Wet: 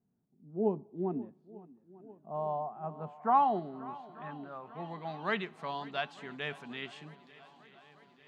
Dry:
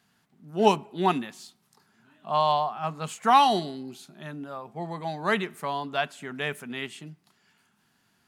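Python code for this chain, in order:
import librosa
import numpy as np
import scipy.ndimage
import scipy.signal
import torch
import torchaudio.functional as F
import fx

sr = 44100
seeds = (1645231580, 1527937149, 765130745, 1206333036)

y = fx.echo_swing(x, sr, ms=895, ratio=1.5, feedback_pct=59, wet_db=-20.0)
y = fx.filter_sweep_lowpass(y, sr, from_hz=410.0, to_hz=4700.0, start_s=1.97, end_s=5.79, q=1.1)
y = y * 10.0 ** (-8.0 / 20.0)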